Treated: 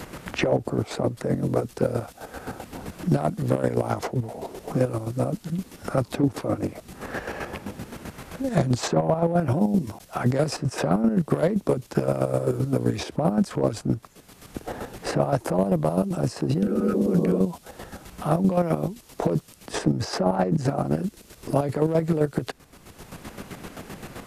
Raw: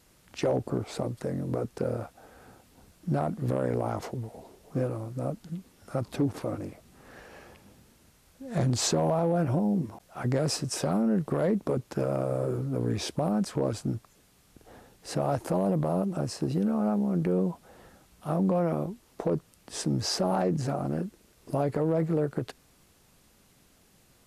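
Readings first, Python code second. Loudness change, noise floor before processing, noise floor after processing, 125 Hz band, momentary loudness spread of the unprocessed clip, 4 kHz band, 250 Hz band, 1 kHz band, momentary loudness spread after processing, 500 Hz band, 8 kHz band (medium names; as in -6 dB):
+4.0 dB, -62 dBFS, -52 dBFS, +5.0 dB, 12 LU, +0.5 dB, +4.5 dB, +5.0 dB, 16 LU, +5.0 dB, -1.0 dB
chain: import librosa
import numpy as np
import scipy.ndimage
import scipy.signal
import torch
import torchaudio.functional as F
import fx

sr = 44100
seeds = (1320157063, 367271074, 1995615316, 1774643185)

y = fx.chopper(x, sr, hz=7.7, depth_pct=60, duty_pct=35)
y = fx.spec_repair(y, sr, seeds[0], start_s=16.65, length_s=0.71, low_hz=210.0, high_hz=1200.0, source='both')
y = fx.band_squash(y, sr, depth_pct=70)
y = y * 10.0 ** (8.0 / 20.0)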